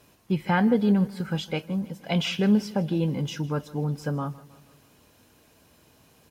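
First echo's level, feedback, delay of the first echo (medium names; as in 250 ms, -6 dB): -20.0 dB, 54%, 158 ms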